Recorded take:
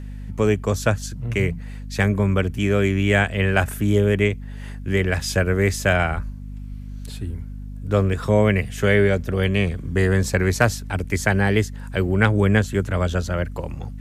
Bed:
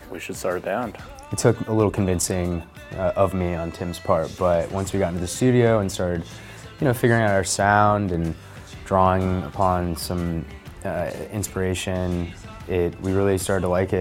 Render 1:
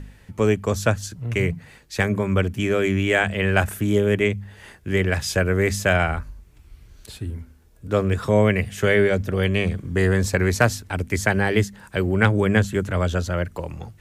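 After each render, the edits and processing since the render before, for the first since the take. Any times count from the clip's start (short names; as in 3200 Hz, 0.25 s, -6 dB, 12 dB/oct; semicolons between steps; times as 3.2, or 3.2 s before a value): de-hum 50 Hz, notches 5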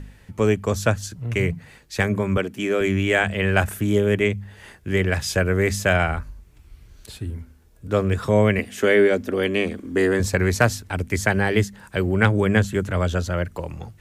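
2.37–2.81 Chebyshev high-pass 260 Hz; 8.59–10.2 resonant low shelf 190 Hz -10 dB, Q 3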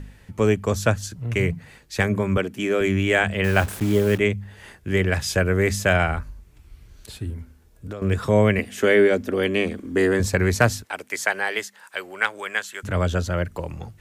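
3.44–4.18 level-crossing sampler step -31.5 dBFS; 7.33–8.02 compressor 20:1, threshold -28 dBFS; 10.83–12.83 HPF 530 Hz -> 1200 Hz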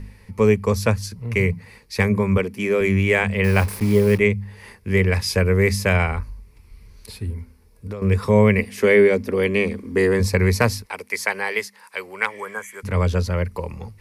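12.29–12.76 spectral repair 1700–5900 Hz after; ripple EQ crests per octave 0.88, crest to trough 9 dB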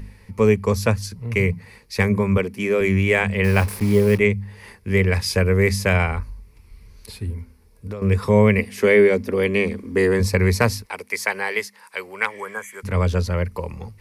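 wow and flutter 16 cents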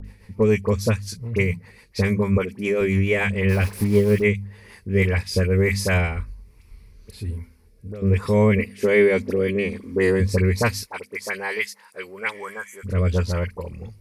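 dispersion highs, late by 50 ms, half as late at 1600 Hz; rotary speaker horn 7 Hz, later 1.2 Hz, at 4.29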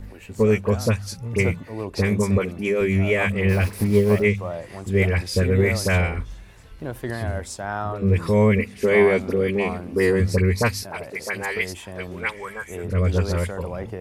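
add bed -11.5 dB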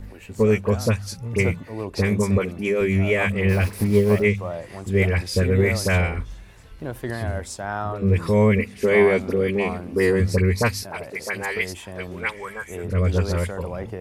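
nothing audible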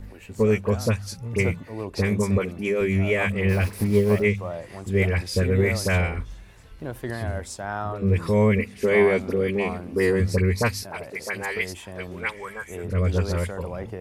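gain -2 dB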